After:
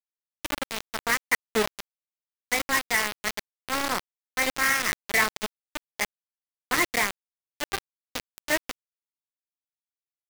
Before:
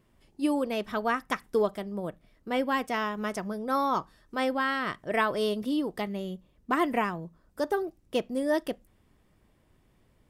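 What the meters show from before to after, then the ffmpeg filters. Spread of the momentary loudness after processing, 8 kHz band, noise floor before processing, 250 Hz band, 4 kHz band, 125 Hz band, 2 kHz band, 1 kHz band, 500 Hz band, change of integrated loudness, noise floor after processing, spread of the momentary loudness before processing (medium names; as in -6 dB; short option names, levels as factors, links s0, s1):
15 LU, +18.5 dB, -66 dBFS, -7.5 dB, +8.0 dB, -4.0 dB, +8.0 dB, -1.5 dB, -5.0 dB, +3.0 dB, under -85 dBFS, 10 LU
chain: -filter_complex "[0:a]acrossover=split=390[s0][s1];[s1]acrusher=bits=2:mode=log:mix=0:aa=0.000001[s2];[s0][s2]amix=inputs=2:normalize=0,lowpass=f=2100:t=q:w=8.5,flanger=delay=6.2:depth=9.7:regen=49:speed=1.5:shape=triangular,acrusher=bits=3:mix=0:aa=0.000001"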